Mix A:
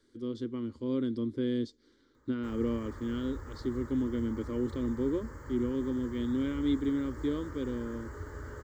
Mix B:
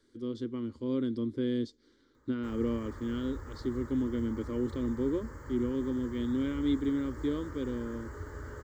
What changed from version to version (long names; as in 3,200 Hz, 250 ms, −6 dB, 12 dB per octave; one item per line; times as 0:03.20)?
nothing changed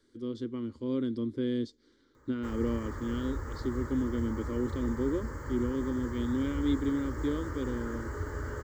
background +6.0 dB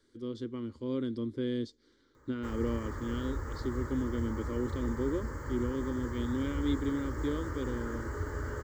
speech: add parametric band 260 Hz −3 dB 1 octave